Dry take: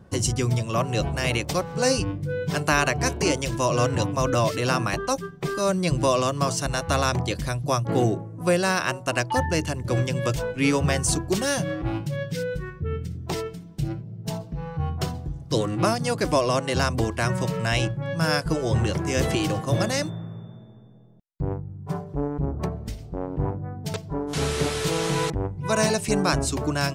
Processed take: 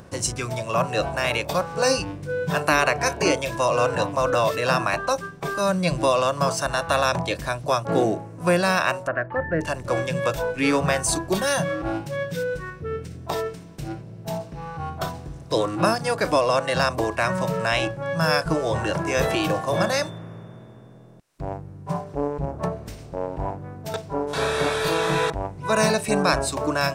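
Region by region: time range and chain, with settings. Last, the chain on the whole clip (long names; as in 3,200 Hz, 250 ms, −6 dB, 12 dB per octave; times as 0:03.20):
0:09.07–0:09.61: elliptic low-pass filter 1,900 Hz, stop band 80 dB + parametric band 900 Hz −14 dB 0.53 octaves
whole clip: compressor on every frequency bin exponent 0.6; upward compression, threshold −35 dBFS; noise reduction from a noise print of the clip's start 11 dB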